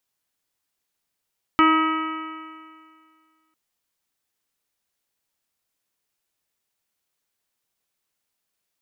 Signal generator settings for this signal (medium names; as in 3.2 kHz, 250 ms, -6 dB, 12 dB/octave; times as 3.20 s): stretched partials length 1.95 s, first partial 316 Hz, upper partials -20/-7/2/-18/-10/-9/-19/-12.5 dB, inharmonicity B 0.001, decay 2.04 s, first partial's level -16 dB